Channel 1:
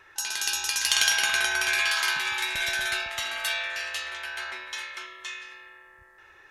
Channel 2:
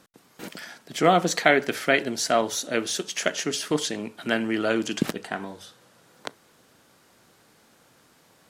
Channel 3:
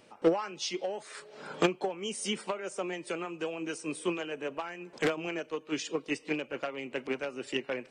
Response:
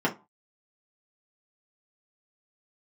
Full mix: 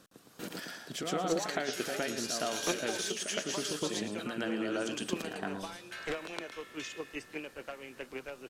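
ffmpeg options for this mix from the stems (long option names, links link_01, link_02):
-filter_complex "[0:a]adelay=1550,volume=-9dB,asplit=3[link_01][link_02][link_03];[link_01]atrim=end=3.1,asetpts=PTS-STARTPTS,afade=type=out:start_time=3.096:duration=0.004:curve=hsin[link_04];[link_02]atrim=start=3.1:end=5.91,asetpts=PTS-STARTPTS,volume=0[link_05];[link_03]atrim=start=5.91,asetpts=PTS-STARTPTS,afade=type=in:duration=0.004:curve=hsin[link_06];[link_04][link_05][link_06]concat=n=3:v=0:a=1[link_07];[1:a]equalizer=frequency=2100:width=4.4:gain=-6,acompressor=threshold=-25dB:ratio=6,volume=-2dB,asplit=2[link_08][link_09];[link_09]volume=-4.5dB[link_10];[2:a]asubboost=boost=10.5:cutoff=56,adelay=1050,volume=-7dB[link_11];[link_07][link_08]amix=inputs=2:normalize=0,equalizer=frequency=870:width_type=o:width=0.34:gain=-7.5,alimiter=level_in=4dB:limit=-24dB:level=0:latency=1:release=382,volume=-4dB,volume=0dB[link_12];[link_10]aecho=0:1:113|226|339|452:1|0.26|0.0676|0.0176[link_13];[link_11][link_12][link_13]amix=inputs=3:normalize=0"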